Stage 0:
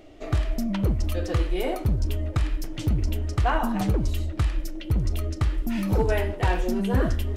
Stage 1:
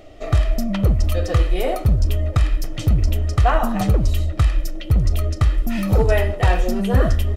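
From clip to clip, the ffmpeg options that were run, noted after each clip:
ffmpeg -i in.wav -af "aecho=1:1:1.6:0.41,volume=5dB" out.wav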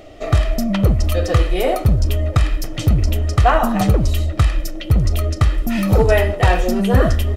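ffmpeg -i in.wav -af "lowshelf=frequency=62:gain=-6.5,volume=4.5dB" out.wav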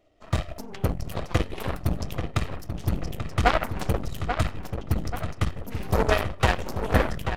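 ffmpeg -i in.wav -filter_complex "[0:a]aeval=exprs='0.794*(cos(1*acos(clip(val(0)/0.794,-1,1)))-cos(1*PI/2))+0.282*(cos(3*acos(clip(val(0)/0.794,-1,1)))-cos(3*PI/2))+0.02*(cos(8*acos(clip(val(0)/0.794,-1,1)))-cos(8*PI/2))':channel_layout=same,asplit=2[link_01][link_02];[link_02]adelay=836,lowpass=frequency=3200:poles=1,volume=-7.5dB,asplit=2[link_03][link_04];[link_04]adelay=836,lowpass=frequency=3200:poles=1,volume=0.47,asplit=2[link_05][link_06];[link_06]adelay=836,lowpass=frequency=3200:poles=1,volume=0.47,asplit=2[link_07][link_08];[link_08]adelay=836,lowpass=frequency=3200:poles=1,volume=0.47,asplit=2[link_09][link_10];[link_10]adelay=836,lowpass=frequency=3200:poles=1,volume=0.47[link_11];[link_03][link_05][link_07][link_09][link_11]amix=inputs=5:normalize=0[link_12];[link_01][link_12]amix=inputs=2:normalize=0,volume=-1.5dB" out.wav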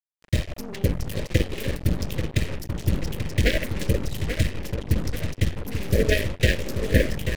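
ffmpeg -i in.wav -af "asuperstop=centerf=1000:order=12:qfactor=0.94,acrusher=bits=5:mix=0:aa=0.5,volume=3dB" out.wav

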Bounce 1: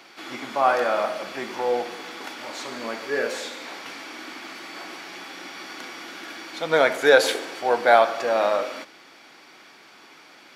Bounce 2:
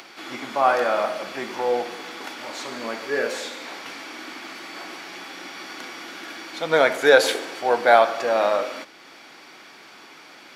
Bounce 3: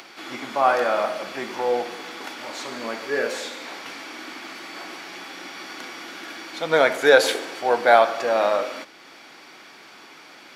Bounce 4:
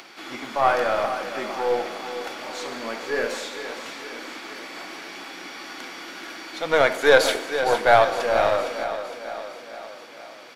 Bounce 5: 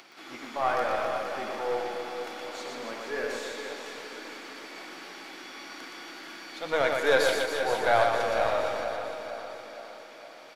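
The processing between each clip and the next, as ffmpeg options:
ffmpeg -i in.wav -af "acompressor=mode=upward:threshold=-41dB:ratio=2.5,volume=1dB" out.wav
ffmpeg -i in.wav -af anull out.wav
ffmpeg -i in.wav -af "aecho=1:1:460|920|1380|1840|2300|2760:0.299|0.167|0.0936|0.0524|0.0294|0.0164,aeval=exprs='0.891*(cos(1*acos(clip(val(0)/0.891,-1,1)))-cos(1*PI/2))+0.0631*(cos(4*acos(clip(val(0)/0.891,-1,1)))-cos(4*PI/2))+0.02*(cos(6*acos(clip(val(0)/0.891,-1,1)))-cos(6*PI/2))+0.0282*(cos(8*acos(clip(val(0)/0.891,-1,1)))-cos(8*PI/2))':channel_layout=same,volume=-1dB" out.wav
ffmpeg -i in.wav -af "aecho=1:1:120|276|478.8|742.4|1085:0.631|0.398|0.251|0.158|0.1,volume=-8dB" out.wav

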